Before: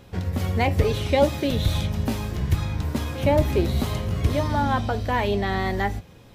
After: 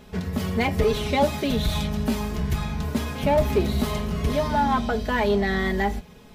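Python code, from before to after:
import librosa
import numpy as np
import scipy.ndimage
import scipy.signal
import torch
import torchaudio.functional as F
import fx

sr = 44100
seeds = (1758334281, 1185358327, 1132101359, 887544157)

p1 = x + 0.75 * np.pad(x, (int(4.7 * sr / 1000.0), 0))[:len(x)]
p2 = np.clip(p1, -10.0 ** (-22.0 / 20.0), 10.0 ** (-22.0 / 20.0))
p3 = p1 + F.gain(torch.from_numpy(p2), -6.0).numpy()
y = F.gain(torch.from_numpy(p3), -3.5).numpy()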